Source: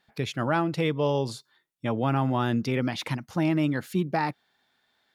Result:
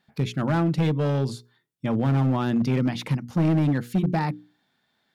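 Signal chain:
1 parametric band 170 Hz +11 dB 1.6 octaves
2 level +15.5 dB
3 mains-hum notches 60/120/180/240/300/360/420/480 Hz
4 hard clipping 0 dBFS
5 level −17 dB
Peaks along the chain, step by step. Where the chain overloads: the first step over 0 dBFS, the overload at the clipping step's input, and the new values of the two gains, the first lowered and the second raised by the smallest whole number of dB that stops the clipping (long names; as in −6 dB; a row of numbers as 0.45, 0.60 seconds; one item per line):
−8.0, +7.5, +7.5, 0.0, −17.0 dBFS
step 2, 7.5 dB
step 2 +7.5 dB, step 5 −9 dB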